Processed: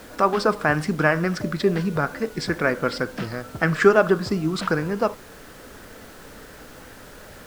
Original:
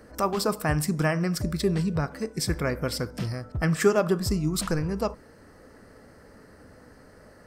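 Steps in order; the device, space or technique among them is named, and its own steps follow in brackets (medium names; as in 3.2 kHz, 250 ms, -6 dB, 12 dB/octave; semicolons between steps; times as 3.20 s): horn gramophone (band-pass 210–3700 Hz; peaking EQ 1.5 kHz +6.5 dB 0.34 oct; wow and flutter; pink noise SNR 22 dB); trim +6 dB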